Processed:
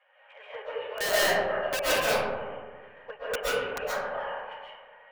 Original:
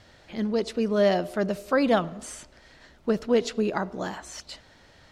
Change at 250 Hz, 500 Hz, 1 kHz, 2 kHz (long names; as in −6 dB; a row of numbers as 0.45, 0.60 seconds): −17.5, −4.0, 0.0, +5.5 decibels